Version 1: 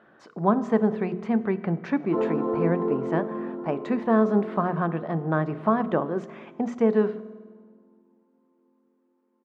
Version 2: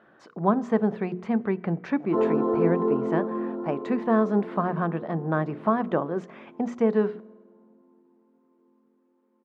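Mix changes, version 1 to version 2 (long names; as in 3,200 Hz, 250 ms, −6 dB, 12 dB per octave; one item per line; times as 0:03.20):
speech: send −8.5 dB
background: send +10.5 dB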